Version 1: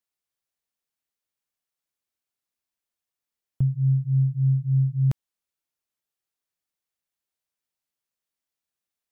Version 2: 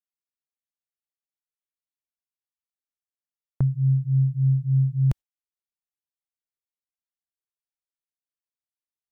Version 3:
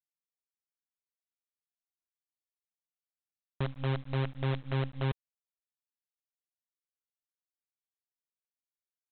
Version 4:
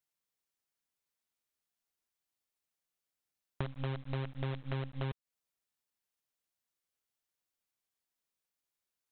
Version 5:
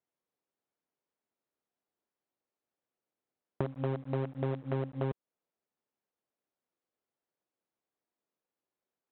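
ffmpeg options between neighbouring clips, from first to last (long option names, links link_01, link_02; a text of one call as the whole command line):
ffmpeg -i in.wav -af "asubboost=boost=2:cutoff=110,agate=range=-16dB:threshold=-32dB:ratio=16:detection=peak" out.wav
ffmpeg -i in.wav -af "tiltshelf=frequency=680:gain=-7.5,aresample=8000,acrusher=bits=5:dc=4:mix=0:aa=0.000001,aresample=44100,volume=-5.5dB" out.wav
ffmpeg -i in.wav -af "acompressor=threshold=-40dB:ratio=6,volume=6dB" out.wav
ffmpeg -i in.wav -af "bandpass=frequency=390:width_type=q:width=0.79:csg=0,volume=9dB" out.wav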